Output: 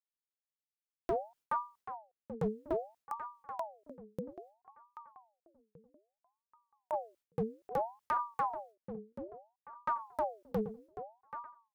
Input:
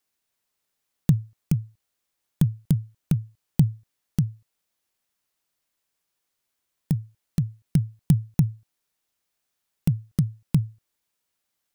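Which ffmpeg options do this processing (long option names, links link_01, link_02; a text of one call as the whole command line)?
ffmpeg -i in.wav -filter_complex "[0:a]agate=range=-33dB:threshold=-49dB:ratio=3:detection=peak,asplit=3[link_01][link_02][link_03];[link_01]afade=type=out:start_time=2.98:duration=0.02[link_04];[link_02]acompressor=threshold=-37dB:ratio=2.5,afade=type=in:start_time=2.98:duration=0.02,afade=type=out:start_time=6.92:duration=0.02[link_05];[link_03]afade=type=in:start_time=6.92:duration=0.02[link_06];[link_04][link_05][link_06]amix=inputs=3:normalize=0,asoftclip=type=hard:threshold=-23.5dB,asplit=2[link_07][link_08];[link_08]adelay=783,lowpass=frequency=1400:poles=1,volume=-10.5dB,asplit=2[link_09][link_10];[link_10]adelay=783,lowpass=frequency=1400:poles=1,volume=0.37,asplit=2[link_11][link_12];[link_12]adelay=783,lowpass=frequency=1400:poles=1,volume=0.37,asplit=2[link_13][link_14];[link_14]adelay=783,lowpass=frequency=1400:poles=1,volume=0.37[link_15];[link_07][link_09][link_11][link_13][link_15]amix=inputs=5:normalize=0,aeval=exprs='val(0)*sin(2*PI*700*n/s+700*0.55/0.61*sin(2*PI*0.61*n/s))':channel_layout=same,volume=-3dB" out.wav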